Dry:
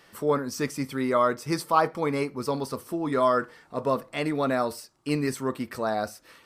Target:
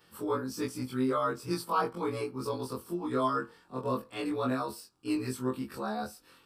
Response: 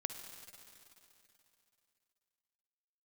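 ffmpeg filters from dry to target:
-af "afftfilt=real='re':imag='-im':win_size=2048:overlap=0.75,equalizer=frequency=630:width_type=o:width=0.33:gain=-9,equalizer=frequency=2000:width_type=o:width=0.33:gain=-11,equalizer=frequency=6300:width_type=o:width=0.33:gain=-6"

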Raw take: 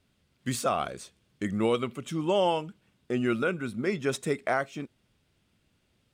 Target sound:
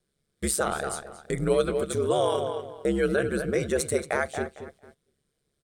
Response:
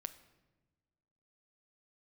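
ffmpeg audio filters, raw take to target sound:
-filter_complex "[0:a]asplit=2[link_01][link_02];[link_02]adelay=247,lowpass=frequency=2900:poles=1,volume=-9.5dB,asplit=2[link_03][link_04];[link_04]adelay=247,lowpass=frequency=2900:poles=1,volume=0.29,asplit=2[link_05][link_06];[link_06]adelay=247,lowpass=frequency=2900:poles=1,volume=0.29[link_07];[link_03][link_05][link_07]amix=inputs=3:normalize=0[link_08];[link_01][link_08]amix=inputs=2:normalize=0,aeval=exprs='val(0)*sin(2*PI*64*n/s)':channel_layout=same,agate=range=-11dB:threshold=-58dB:ratio=16:detection=peak,equalizer=frequency=250:width_type=o:width=0.33:gain=-10,equalizer=frequency=400:width_type=o:width=0.33:gain=7,equalizer=frequency=800:width_type=o:width=0.33:gain=-8,equalizer=frequency=2500:width_type=o:width=0.33:gain=-9,equalizer=frequency=8000:width_type=o:width=0.33:gain=11,asplit=2[link_09][link_10];[link_10]alimiter=level_in=1.5dB:limit=-24dB:level=0:latency=1,volume=-1.5dB,volume=2dB[link_11];[link_09][link_11]amix=inputs=2:normalize=0,asetrate=48000,aresample=44100"

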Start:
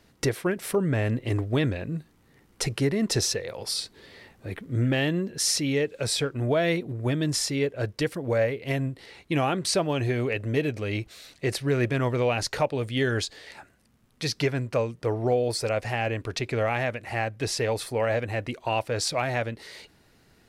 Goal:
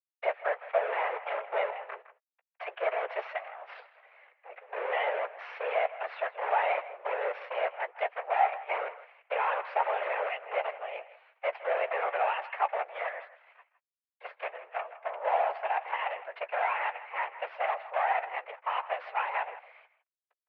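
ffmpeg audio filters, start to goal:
ffmpeg -i in.wav -filter_complex "[0:a]asplit=3[link_01][link_02][link_03];[link_01]afade=type=out:start_time=12.9:duration=0.02[link_04];[link_02]flanger=delay=1.4:depth=8.2:regen=-70:speed=1.5:shape=triangular,afade=type=in:start_time=12.9:duration=0.02,afade=type=out:start_time=15.12:duration=0.02[link_05];[link_03]afade=type=in:start_time=15.12:duration=0.02[link_06];[link_04][link_05][link_06]amix=inputs=3:normalize=0,acrusher=bits=5:dc=4:mix=0:aa=0.000001,afftfilt=real='hypot(re,im)*cos(2*PI*random(0))':imag='hypot(re,im)*sin(2*PI*random(1))':win_size=512:overlap=0.75,asplit=2[link_07][link_08];[link_08]adelay=14,volume=-11.5dB[link_09];[link_07][link_09]amix=inputs=2:normalize=0,asplit=2[link_10][link_11];[link_11]adelay=160,highpass=300,lowpass=3400,asoftclip=type=hard:threshold=-26dB,volume=-14dB[link_12];[link_10][link_12]amix=inputs=2:normalize=0,highpass=frequency=300:width_type=q:width=0.5412,highpass=frequency=300:width_type=q:width=1.307,lowpass=frequency=2300:width_type=q:width=0.5176,lowpass=frequency=2300:width_type=q:width=0.7071,lowpass=frequency=2300:width_type=q:width=1.932,afreqshift=220,volume=2.5dB" out.wav

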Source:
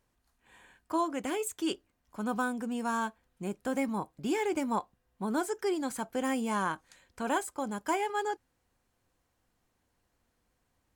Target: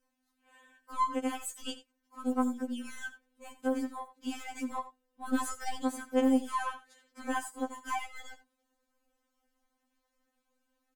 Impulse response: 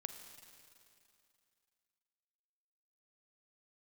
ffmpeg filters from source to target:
-filter_complex "[0:a]asettb=1/sr,asplit=3[link_01][link_02][link_03];[link_01]atrim=end=3.684[link_04];[link_02]atrim=start=3.68:end=4.74,asetpts=PTS-STARTPTS,afade=type=in:duration=0.004:curve=qsin,afade=type=out:start_time=1.056:duration=0.004:curve=qsin,lowshelf=frequency=300:gain=-8[link_05];[link_03]atrim=start=4.736[link_06];[link_04][link_05]acrossfade=duration=0.004:curve1=hsin:curve2=qsin[link_07];[link_07][link_06]acrossfade=duration=0.004:curve1=qsin:curve2=hsin,asplit=3[link_08][link_09][link_10];[link_08]afade=type=out:start_time=5.25:duration=0.02[link_11];[link_09]acontrast=28,afade=type=in:start_time=5.25:duration=0.02,afade=type=out:start_time=5.75:duration=0.02[link_12];[link_10]afade=type=in:start_time=5.75:duration=0.02[link_13];[link_11][link_12][link_13]amix=inputs=3:normalize=0,aeval=exprs='(tanh(7.94*val(0)+0.35)-tanh(0.35))/7.94':channel_layout=same,aecho=1:1:83:0.188,afftfilt=real='re*3.46*eq(mod(b,12),0)':imag='im*3.46*eq(mod(b,12),0)':win_size=2048:overlap=0.75"

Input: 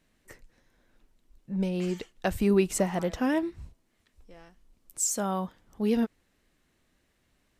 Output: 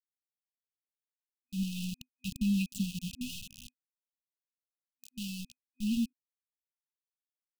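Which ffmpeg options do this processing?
ffmpeg -i in.wav -filter_complex "[0:a]lowpass=4600,equalizer=frequency=1400:width_type=o:width=0.2:gain=6,asplit=2[link_01][link_02];[link_02]adelay=290,highpass=300,lowpass=3400,asoftclip=type=hard:threshold=-20.5dB,volume=-8dB[link_03];[link_01][link_03]amix=inputs=2:normalize=0,aeval=exprs='val(0)*gte(abs(val(0)),0.0398)':channel_layout=same,afftfilt=real='re*(1-between(b*sr/4096,250,2500))':imag='im*(1-between(b*sr/4096,250,2500))':win_size=4096:overlap=0.75,volume=-3dB" out.wav

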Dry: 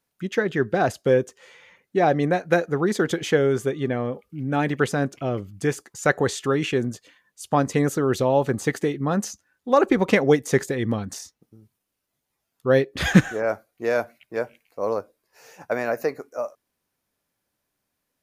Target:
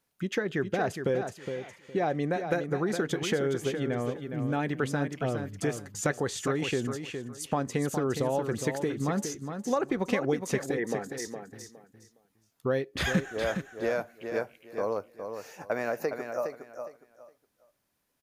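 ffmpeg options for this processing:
ffmpeg -i in.wav -filter_complex "[0:a]acompressor=threshold=-28dB:ratio=3,asplit=3[link_01][link_02][link_03];[link_01]afade=type=out:start_time=10.76:duration=0.02[link_04];[link_02]highpass=310,equalizer=frequency=440:width_type=q:width=4:gain=9,equalizer=frequency=770:width_type=q:width=4:gain=6,equalizer=frequency=1100:width_type=q:width=4:gain=-5,equalizer=frequency=1800:width_type=q:width=4:gain=10,lowpass=frequency=2200:width=0.5412,lowpass=frequency=2200:width=1.3066,afade=type=in:start_time=10.76:duration=0.02,afade=type=out:start_time=11.17:duration=0.02[link_05];[link_03]afade=type=in:start_time=11.17:duration=0.02[link_06];[link_04][link_05][link_06]amix=inputs=3:normalize=0,aecho=1:1:413|826|1239:0.422|0.0928|0.0204" out.wav

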